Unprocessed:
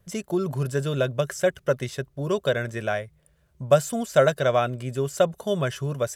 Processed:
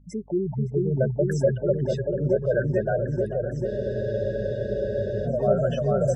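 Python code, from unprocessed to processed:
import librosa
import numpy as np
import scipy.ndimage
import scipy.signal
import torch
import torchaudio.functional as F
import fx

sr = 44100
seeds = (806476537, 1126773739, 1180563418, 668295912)

y = fx.spec_gate(x, sr, threshold_db=-10, keep='strong')
y = fx.peak_eq(y, sr, hz=7800.0, db=-5.5, octaves=0.84)
y = y + 10.0 ** (-20.5 / 20.0) * np.pad(y, (int(566 * sr / 1000.0), 0))[:len(y)]
y = fx.add_hum(y, sr, base_hz=50, snr_db=28)
y = fx.echo_opening(y, sr, ms=440, hz=400, octaves=1, feedback_pct=70, wet_db=0)
y = fx.spec_freeze(y, sr, seeds[0], at_s=3.69, hold_s=1.56)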